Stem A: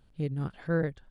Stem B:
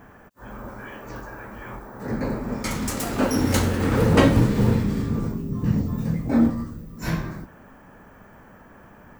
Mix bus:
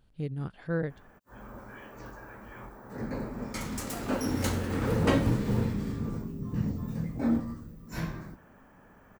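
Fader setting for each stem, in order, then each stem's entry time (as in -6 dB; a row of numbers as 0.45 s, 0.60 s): -2.5 dB, -8.5 dB; 0.00 s, 0.90 s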